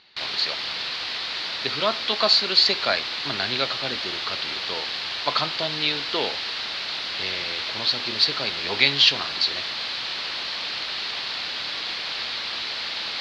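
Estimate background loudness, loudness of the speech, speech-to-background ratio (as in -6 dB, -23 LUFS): -27.0 LUFS, -23.5 LUFS, 3.5 dB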